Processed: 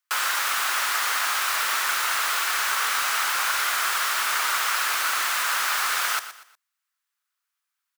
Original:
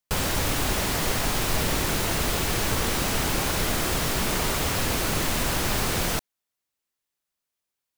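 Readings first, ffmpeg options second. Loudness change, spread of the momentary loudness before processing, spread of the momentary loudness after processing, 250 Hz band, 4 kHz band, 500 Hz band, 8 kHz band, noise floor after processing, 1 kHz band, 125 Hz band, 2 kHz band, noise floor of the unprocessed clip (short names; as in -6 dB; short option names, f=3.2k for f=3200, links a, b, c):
+2.0 dB, 0 LU, 0 LU, under -25 dB, +2.5 dB, -12.5 dB, +1.5 dB, -83 dBFS, +5.0 dB, under -35 dB, +6.5 dB, -85 dBFS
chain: -af "highpass=f=1.3k:t=q:w=2.7,aecho=1:1:120|240|360:0.224|0.0761|0.0259,volume=1dB"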